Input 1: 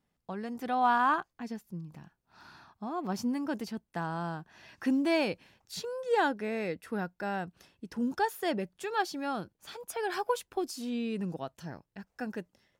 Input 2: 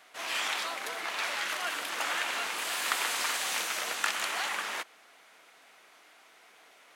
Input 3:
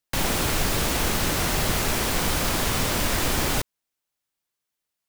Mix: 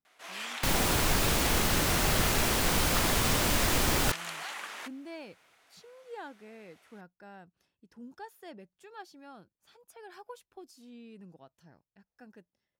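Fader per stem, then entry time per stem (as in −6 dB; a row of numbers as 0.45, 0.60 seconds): −16.0, −7.0, −3.0 decibels; 0.00, 0.05, 0.50 seconds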